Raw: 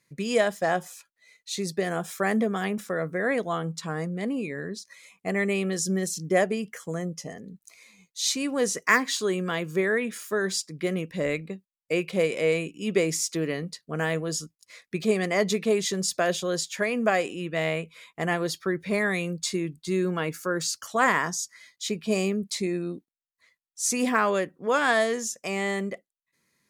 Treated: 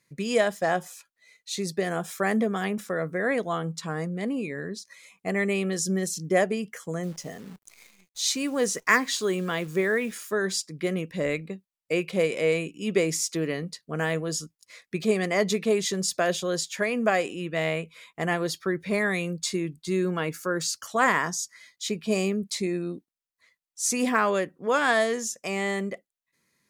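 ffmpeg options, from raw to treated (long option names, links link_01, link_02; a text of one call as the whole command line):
ffmpeg -i in.wav -filter_complex "[0:a]asettb=1/sr,asplit=3[link_01][link_02][link_03];[link_01]atrim=end=7.034[link_04];[link_02]atrim=start=7.03:end=10.19,asetpts=PTS-STARTPTS,afade=type=in:duration=0.004:curve=qsin,afade=type=out:start_time=3.156:duration=0.004:curve=qsin,acrusher=bits=9:dc=4:mix=0:aa=0.000001[link_05];[link_03]atrim=start=10.186[link_06];[link_04][link_05]acrossfade=duration=0.004:curve1=hsin:curve2=qsin[link_07];[link_07][link_06]acrossfade=duration=0.004:curve1=qsin:curve2=hsin" out.wav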